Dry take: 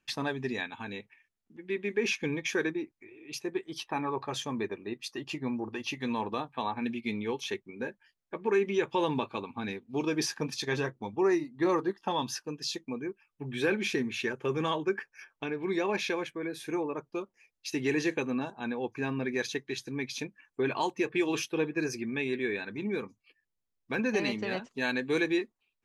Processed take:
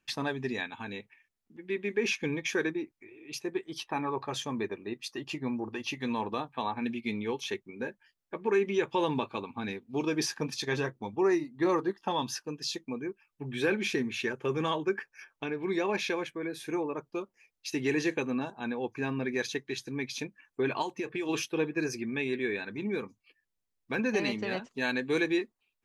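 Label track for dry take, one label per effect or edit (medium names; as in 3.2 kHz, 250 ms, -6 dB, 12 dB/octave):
20.820000	21.290000	compression 3:1, threshold -31 dBFS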